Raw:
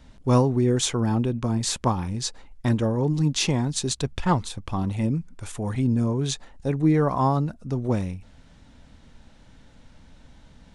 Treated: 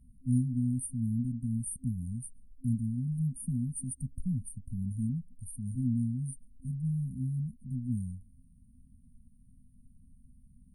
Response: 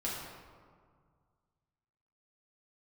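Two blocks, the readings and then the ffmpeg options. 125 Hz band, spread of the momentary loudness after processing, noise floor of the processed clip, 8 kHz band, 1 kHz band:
-7.5 dB, 10 LU, -60 dBFS, -11.0 dB, under -40 dB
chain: -af "afftfilt=real='re*(1-between(b*sr/4096,260,8700))':imag='im*(1-between(b*sr/4096,260,8700))':win_size=4096:overlap=0.75,lowshelf=f=290:t=q:w=1.5:g=-6.5"

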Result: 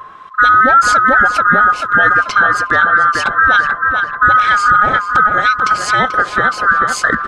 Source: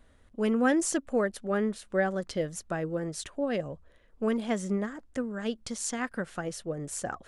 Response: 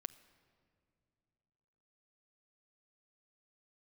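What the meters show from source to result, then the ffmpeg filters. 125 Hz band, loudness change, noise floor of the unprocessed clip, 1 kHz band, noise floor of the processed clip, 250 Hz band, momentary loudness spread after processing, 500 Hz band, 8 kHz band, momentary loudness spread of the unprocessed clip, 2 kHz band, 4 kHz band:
+9.0 dB, +20.5 dB, -61 dBFS, +29.0 dB, -29 dBFS, +2.5 dB, 5 LU, +6.5 dB, +8.0 dB, 9 LU, +28.5 dB, +19.0 dB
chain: -filter_complex "[0:a]afftfilt=real='real(if(lt(b,960),b+48*(1-2*mod(floor(b/48),2)),b),0)':imag='imag(if(lt(b,960),b+48*(1-2*mod(floor(b/48),2)),b),0)':win_size=2048:overlap=0.75,lowpass=3.8k,acrossover=split=1600[a][b];[a]aeval=exprs='val(0)*(1-0.5/2+0.5/2*cos(2*PI*1.2*n/s))':c=same[c];[b]aeval=exprs='val(0)*(1-0.5/2-0.5/2*cos(2*PI*1.2*n/s))':c=same[d];[c][d]amix=inputs=2:normalize=0,asplit=2[e][f];[f]adelay=437,lowpass=f=2.9k:p=1,volume=-7.5dB,asplit=2[g][h];[h]adelay=437,lowpass=f=2.9k:p=1,volume=0.47,asplit=2[i][j];[j]adelay=437,lowpass=f=2.9k:p=1,volume=0.47,asplit=2[k][l];[l]adelay=437,lowpass=f=2.9k:p=1,volume=0.47,asplit=2[m][n];[n]adelay=437,lowpass=f=2.9k:p=1,volume=0.47[o];[e][g][i][k][m][o]amix=inputs=6:normalize=0,alimiter=level_in=26.5dB:limit=-1dB:release=50:level=0:latency=1,volume=-1dB"

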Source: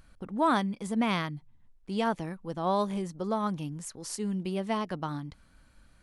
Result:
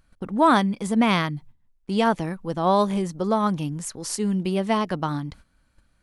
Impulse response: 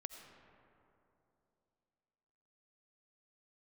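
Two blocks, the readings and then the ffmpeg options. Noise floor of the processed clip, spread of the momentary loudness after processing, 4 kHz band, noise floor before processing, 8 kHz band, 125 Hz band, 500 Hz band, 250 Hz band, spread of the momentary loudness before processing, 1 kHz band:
-65 dBFS, 11 LU, +8.0 dB, -61 dBFS, +8.0 dB, +8.0 dB, +8.0 dB, +8.0 dB, 11 LU, +8.0 dB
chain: -af "agate=range=-13dB:threshold=-52dB:ratio=16:detection=peak,volume=8dB"

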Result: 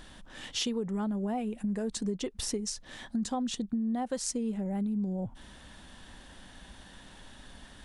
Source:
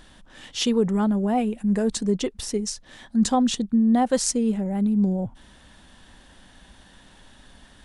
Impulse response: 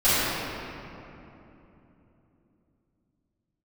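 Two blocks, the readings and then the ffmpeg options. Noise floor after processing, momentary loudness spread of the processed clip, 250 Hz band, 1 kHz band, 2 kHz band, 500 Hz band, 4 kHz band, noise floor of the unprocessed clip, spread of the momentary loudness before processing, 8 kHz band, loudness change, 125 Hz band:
-53 dBFS, 19 LU, -10.5 dB, -11.5 dB, -7.0 dB, -10.5 dB, -6.5 dB, -52 dBFS, 8 LU, -7.5 dB, -10.0 dB, -9.5 dB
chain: -af "acompressor=threshold=-30dB:ratio=6"

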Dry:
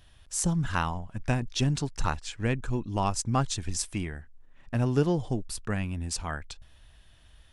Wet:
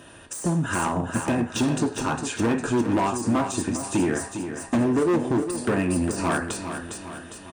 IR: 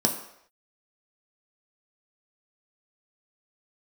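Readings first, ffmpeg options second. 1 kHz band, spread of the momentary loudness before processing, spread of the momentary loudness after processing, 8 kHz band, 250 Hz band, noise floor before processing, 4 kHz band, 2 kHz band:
+5.5 dB, 8 LU, 10 LU, +3.0 dB, +9.0 dB, -57 dBFS, +1.0 dB, +6.5 dB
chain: -filter_complex "[0:a]aresample=22050,aresample=44100,acompressor=threshold=-34dB:ratio=16[a];[1:a]atrim=start_sample=2205,asetrate=70560,aresample=44100[b];[a][b]afir=irnorm=-1:irlink=0,asoftclip=type=hard:threshold=-26dB,highpass=41,aecho=1:1:405|810|1215|1620|2025|2430:0.355|0.185|0.0959|0.0499|0.0259|0.0135,deesser=0.75,volume=8dB"

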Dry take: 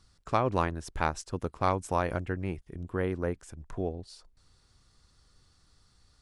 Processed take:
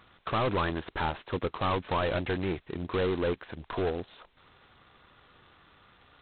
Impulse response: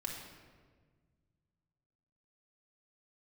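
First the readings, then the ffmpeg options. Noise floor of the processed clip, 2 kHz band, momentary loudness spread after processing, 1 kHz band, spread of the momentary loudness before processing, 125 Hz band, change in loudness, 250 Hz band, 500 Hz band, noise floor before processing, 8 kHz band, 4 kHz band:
-64 dBFS, +2.5 dB, 8 LU, -0.5 dB, 12 LU, -1.0 dB, +1.0 dB, +1.0 dB, +2.0 dB, -66 dBFS, under -30 dB, +8.0 dB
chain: -filter_complex "[0:a]asplit=2[a][b];[b]highpass=f=720:p=1,volume=32dB,asoftclip=type=tanh:threshold=-11dB[c];[a][c]amix=inputs=2:normalize=0,lowpass=f=1.5k:p=1,volume=-6dB,volume=-8dB" -ar 8000 -c:a adpcm_g726 -b:a 16k

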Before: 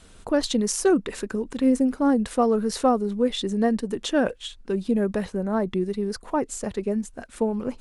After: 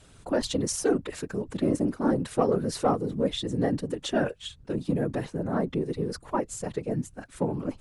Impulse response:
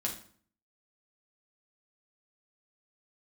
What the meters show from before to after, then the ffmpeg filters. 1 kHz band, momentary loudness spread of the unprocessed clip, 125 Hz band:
-4.0 dB, 8 LU, +3.5 dB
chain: -af "acontrast=63,afftfilt=real='hypot(re,im)*cos(2*PI*random(0))':imag='hypot(re,im)*sin(2*PI*random(1))':win_size=512:overlap=0.75,volume=-4dB"

